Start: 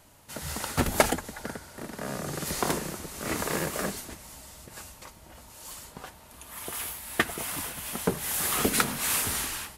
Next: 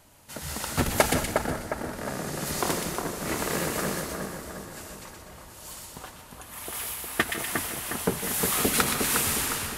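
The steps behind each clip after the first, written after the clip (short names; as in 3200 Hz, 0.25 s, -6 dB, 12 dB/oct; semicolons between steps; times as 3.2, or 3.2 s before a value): split-band echo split 1900 Hz, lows 0.358 s, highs 0.122 s, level -4 dB; reverb, pre-delay 0.152 s, DRR 12 dB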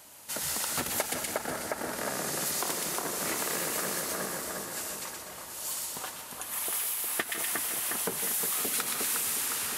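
HPF 380 Hz 6 dB/oct; high shelf 4400 Hz +6.5 dB; compressor 5:1, threshold -32 dBFS, peak gain reduction 16 dB; gain +3 dB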